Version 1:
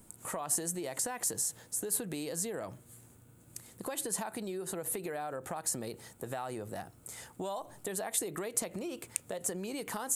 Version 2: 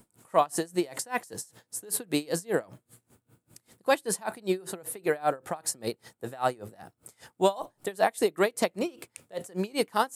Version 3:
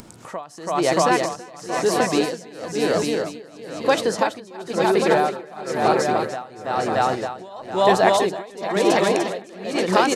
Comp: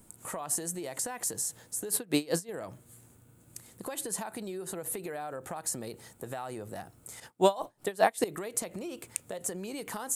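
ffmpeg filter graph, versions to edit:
ffmpeg -i take0.wav -i take1.wav -filter_complex "[1:a]asplit=2[link_01][link_02];[0:a]asplit=3[link_03][link_04][link_05];[link_03]atrim=end=1.922[link_06];[link_01]atrim=start=1.918:end=2.492[link_07];[link_04]atrim=start=2.488:end=7.202[link_08];[link_02]atrim=start=7.198:end=8.242[link_09];[link_05]atrim=start=8.238[link_10];[link_06][link_07]acrossfade=duration=0.004:curve1=hsin:curve2=hsin[link_11];[link_11][link_08]acrossfade=duration=0.004:curve1=hsin:curve2=hsin[link_12];[link_12][link_09]acrossfade=duration=0.004:curve1=hsin:curve2=hsin[link_13];[link_13][link_10]acrossfade=duration=0.004:curve1=hsin:curve2=hsin" out.wav

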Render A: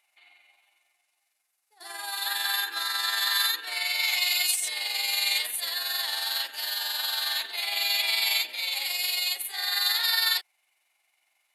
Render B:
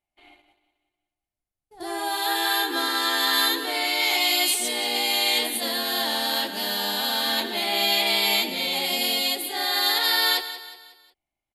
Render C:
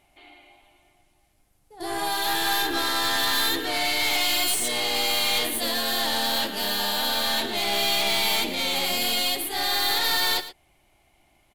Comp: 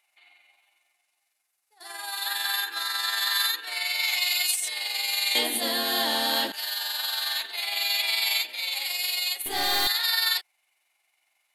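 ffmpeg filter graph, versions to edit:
ffmpeg -i take0.wav -i take1.wav -i take2.wav -filter_complex "[0:a]asplit=3[link_01][link_02][link_03];[link_01]atrim=end=5.352[link_04];[1:a]atrim=start=5.348:end=6.522[link_05];[link_02]atrim=start=6.518:end=9.462[link_06];[2:a]atrim=start=9.458:end=9.872[link_07];[link_03]atrim=start=9.868[link_08];[link_04][link_05]acrossfade=duration=0.004:curve1=hsin:curve2=hsin[link_09];[link_09][link_06]acrossfade=duration=0.004:curve1=hsin:curve2=hsin[link_10];[link_10][link_07]acrossfade=duration=0.004:curve1=hsin:curve2=hsin[link_11];[link_11][link_08]acrossfade=duration=0.004:curve1=hsin:curve2=hsin" out.wav

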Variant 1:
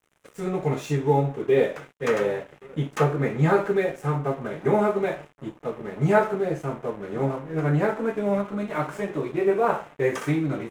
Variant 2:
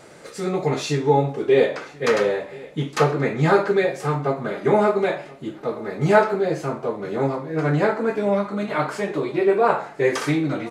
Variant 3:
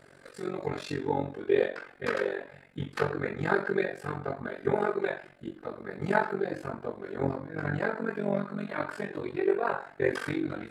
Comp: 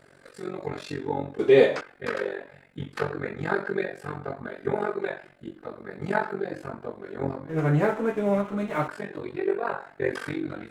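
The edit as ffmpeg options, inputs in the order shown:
ffmpeg -i take0.wav -i take1.wav -i take2.wav -filter_complex "[2:a]asplit=3[link_01][link_02][link_03];[link_01]atrim=end=1.392[link_04];[1:a]atrim=start=1.388:end=1.812[link_05];[link_02]atrim=start=1.808:end=7.492[link_06];[0:a]atrim=start=7.488:end=8.882[link_07];[link_03]atrim=start=8.878[link_08];[link_04][link_05]acrossfade=duration=0.004:curve1=hsin:curve2=hsin[link_09];[link_09][link_06]acrossfade=duration=0.004:curve1=hsin:curve2=hsin[link_10];[link_10][link_07]acrossfade=duration=0.004:curve1=hsin:curve2=hsin[link_11];[link_11][link_08]acrossfade=duration=0.004:curve1=hsin:curve2=hsin" out.wav

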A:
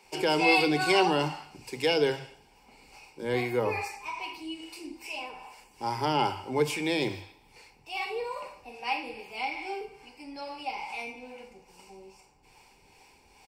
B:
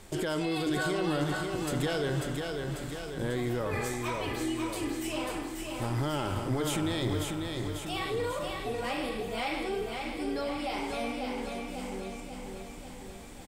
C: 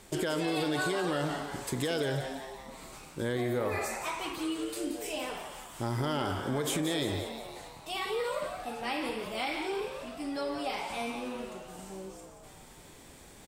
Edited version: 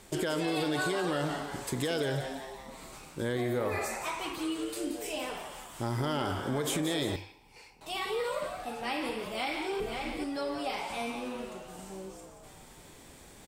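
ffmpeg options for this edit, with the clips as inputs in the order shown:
ffmpeg -i take0.wav -i take1.wav -i take2.wav -filter_complex "[2:a]asplit=3[link_01][link_02][link_03];[link_01]atrim=end=7.162[link_04];[0:a]atrim=start=7.158:end=7.812[link_05];[link_02]atrim=start=7.808:end=9.802[link_06];[1:a]atrim=start=9.798:end=10.242[link_07];[link_03]atrim=start=10.238[link_08];[link_04][link_05]acrossfade=duration=0.004:curve1=hsin:curve2=hsin[link_09];[link_09][link_06]acrossfade=duration=0.004:curve1=hsin:curve2=hsin[link_10];[link_10][link_07]acrossfade=duration=0.004:curve1=hsin:curve2=hsin[link_11];[link_11][link_08]acrossfade=duration=0.004:curve1=hsin:curve2=hsin" out.wav

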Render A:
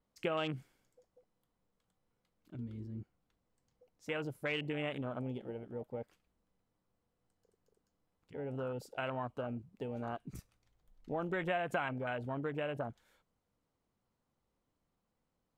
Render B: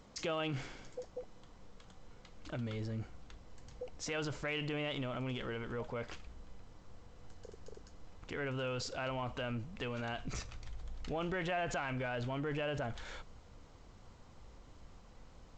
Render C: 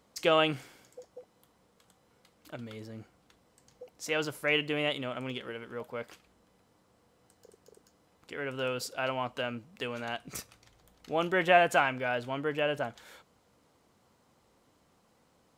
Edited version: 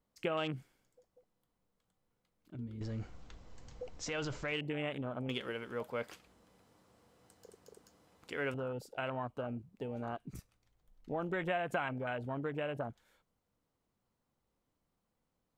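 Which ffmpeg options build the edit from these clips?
ffmpeg -i take0.wav -i take1.wav -i take2.wav -filter_complex "[0:a]asplit=3[link_01][link_02][link_03];[link_01]atrim=end=2.812[link_04];[1:a]atrim=start=2.808:end=4.522[link_05];[link_02]atrim=start=4.518:end=5.292[link_06];[2:a]atrim=start=5.288:end=8.542[link_07];[link_03]atrim=start=8.538[link_08];[link_04][link_05]acrossfade=duration=0.004:curve1=hsin:curve2=hsin[link_09];[link_09][link_06]acrossfade=duration=0.004:curve1=hsin:curve2=hsin[link_10];[link_10][link_07]acrossfade=duration=0.004:curve1=hsin:curve2=hsin[link_11];[link_11][link_08]acrossfade=duration=0.004:curve1=hsin:curve2=hsin" out.wav

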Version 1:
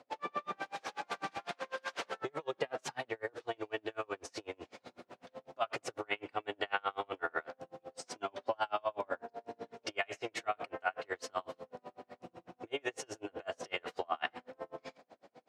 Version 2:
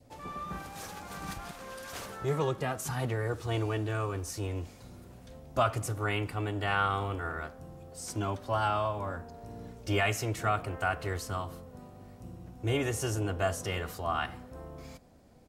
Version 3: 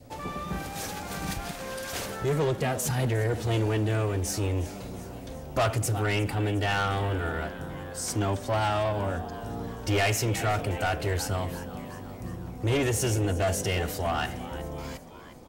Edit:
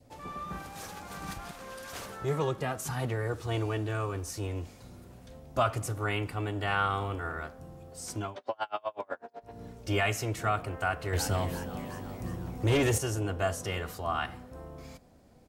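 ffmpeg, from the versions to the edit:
ffmpeg -i take0.wav -i take1.wav -i take2.wav -filter_complex "[1:a]asplit=3[link_01][link_02][link_03];[link_01]atrim=end=8.38[link_04];[0:a]atrim=start=8.14:end=9.63[link_05];[link_02]atrim=start=9.39:end=11.132[link_06];[2:a]atrim=start=11.128:end=12.982[link_07];[link_03]atrim=start=12.978[link_08];[link_04][link_05]acrossfade=duration=0.24:curve1=tri:curve2=tri[link_09];[link_09][link_06]acrossfade=duration=0.24:curve1=tri:curve2=tri[link_10];[link_10][link_07]acrossfade=duration=0.004:curve1=hsin:curve2=hsin[link_11];[link_11][link_08]acrossfade=duration=0.004:curve1=hsin:curve2=hsin" out.wav

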